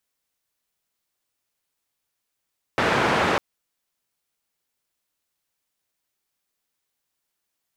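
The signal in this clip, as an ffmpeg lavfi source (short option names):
-f lavfi -i "anoisesrc=c=white:d=0.6:r=44100:seed=1,highpass=f=96,lowpass=f=1500,volume=-4.7dB"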